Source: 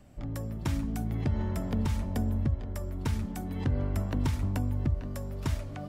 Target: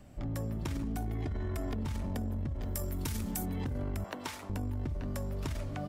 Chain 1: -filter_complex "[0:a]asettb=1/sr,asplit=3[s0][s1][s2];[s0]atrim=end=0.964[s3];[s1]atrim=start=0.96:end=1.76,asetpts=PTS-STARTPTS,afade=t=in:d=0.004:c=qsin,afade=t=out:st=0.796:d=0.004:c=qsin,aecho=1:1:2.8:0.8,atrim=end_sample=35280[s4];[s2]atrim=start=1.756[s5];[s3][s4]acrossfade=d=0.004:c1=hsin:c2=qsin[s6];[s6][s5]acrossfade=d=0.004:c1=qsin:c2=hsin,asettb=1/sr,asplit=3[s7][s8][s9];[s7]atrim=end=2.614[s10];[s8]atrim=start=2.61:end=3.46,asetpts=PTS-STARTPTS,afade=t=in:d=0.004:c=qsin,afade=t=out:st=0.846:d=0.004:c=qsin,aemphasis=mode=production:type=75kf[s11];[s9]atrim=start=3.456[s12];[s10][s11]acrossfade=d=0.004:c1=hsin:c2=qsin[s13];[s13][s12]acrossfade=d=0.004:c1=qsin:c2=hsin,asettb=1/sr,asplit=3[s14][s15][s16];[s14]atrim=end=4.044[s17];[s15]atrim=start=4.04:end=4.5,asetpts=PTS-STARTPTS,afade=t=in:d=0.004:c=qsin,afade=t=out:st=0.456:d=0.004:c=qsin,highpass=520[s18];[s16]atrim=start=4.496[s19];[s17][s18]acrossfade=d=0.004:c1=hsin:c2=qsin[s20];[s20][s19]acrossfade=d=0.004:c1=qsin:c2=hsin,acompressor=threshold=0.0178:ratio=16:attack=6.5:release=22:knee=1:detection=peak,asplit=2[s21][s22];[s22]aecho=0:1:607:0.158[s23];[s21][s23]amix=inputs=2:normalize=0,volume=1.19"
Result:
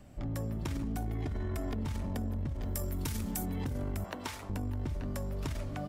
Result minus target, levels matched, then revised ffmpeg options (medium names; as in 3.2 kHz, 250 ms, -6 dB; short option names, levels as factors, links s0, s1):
echo-to-direct +9 dB
-filter_complex "[0:a]asettb=1/sr,asplit=3[s0][s1][s2];[s0]atrim=end=0.964[s3];[s1]atrim=start=0.96:end=1.76,asetpts=PTS-STARTPTS,afade=t=in:d=0.004:c=qsin,afade=t=out:st=0.796:d=0.004:c=qsin,aecho=1:1:2.8:0.8,atrim=end_sample=35280[s4];[s2]atrim=start=1.756[s5];[s3][s4]acrossfade=d=0.004:c1=hsin:c2=qsin[s6];[s6][s5]acrossfade=d=0.004:c1=qsin:c2=hsin,asettb=1/sr,asplit=3[s7][s8][s9];[s7]atrim=end=2.614[s10];[s8]atrim=start=2.61:end=3.46,asetpts=PTS-STARTPTS,afade=t=in:d=0.004:c=qsin,afade=t=out:st=0.846:d=0.004:c=qsin,aemphasis=mode=production:type=75kf[s11];[s9]atrim=start=3.456[s12];[s10][s11]acrossfade=d=0.004:c1=hsin:c2=qsin[s13];[s13][s12]acrossfade=d=0.004:c1=qsin:c2=hsin,asettb=1/sr,asplit=3[s14][s15][s16];[s14]atrim=end=4.044[s17];[s15]atrim=start=4.04:end=4.5,asetpts=PTS-STARTPTS,afade=t=in:d=0.004:c=qsin,afade=t=out:st=0.456:d=0.004:c=qsin,highpass=520[s18];[s16]atrim=start=4.496[s19];[s17][s18]acrossfade=d=0.004:c1=hsin:c2=qsin[s20];[s20][s19]acrossfade=d=0.004:c1=qsin:c2=hsin,acompressor=threshold=0.0178:ratio=16:attack=6.5:release=22:knee=1:detection=peak,asplit=2[s21][s22];[s22]aecho=0:1:607:0.0562[s23];[s21][s23]amix=inputs=2:normalize=0,volume=1.19"